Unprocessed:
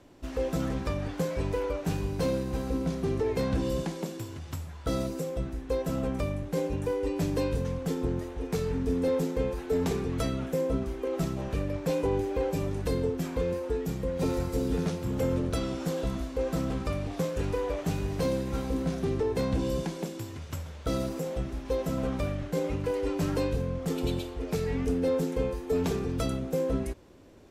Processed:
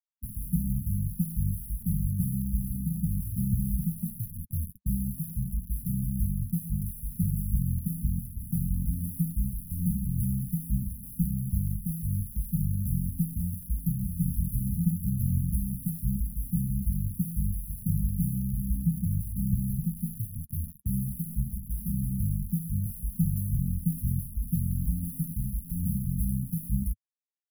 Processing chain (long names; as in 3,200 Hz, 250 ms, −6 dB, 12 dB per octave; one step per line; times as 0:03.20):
0:18.38–0:19.97: phaser with its sweep stopped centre 2,900 Hz, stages 4
bit reduction 6 bits
flanger 1.6 Hz, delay 3.2 ms, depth 7.2 ms, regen −39%
linear-phase brick-wall band-stop 230–10,000 Hz
level +9 dB